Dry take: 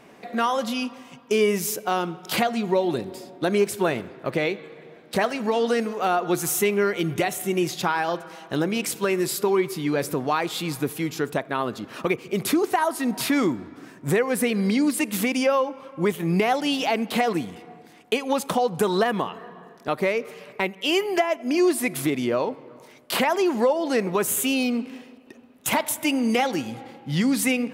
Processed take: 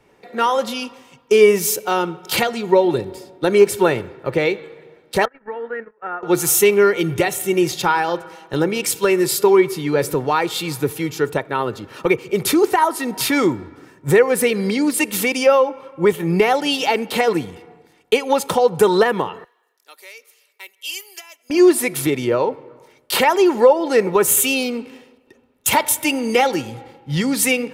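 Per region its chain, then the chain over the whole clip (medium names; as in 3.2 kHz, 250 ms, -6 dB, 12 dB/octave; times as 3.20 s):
5.25–6.23 s: gate -27 dBFS, range -22 dB + four-pole ladder low-pass 1.9 kHz, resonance 65%
19.44–21.50 s: steep high-pass 230 Hz 48 dB/octave + differentiator
whole clip: bass shelf 76 Hz +7.5 dB; comb 2.2 ms, depth 46%; three bands expanded up and down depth 40%; trim +5 dB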